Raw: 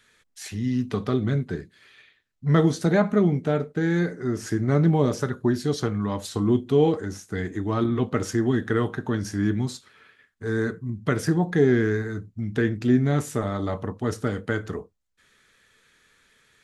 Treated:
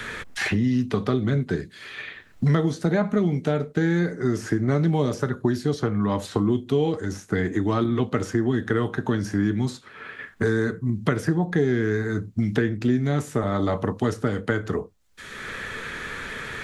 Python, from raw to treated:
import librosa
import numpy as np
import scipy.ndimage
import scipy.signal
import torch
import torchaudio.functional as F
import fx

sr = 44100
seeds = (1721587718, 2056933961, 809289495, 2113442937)

y = fx.high_shelf(x, sr, hz=10000.0, db=-3.0)
y = fx.band_squash(y, sr, depth_pct=100)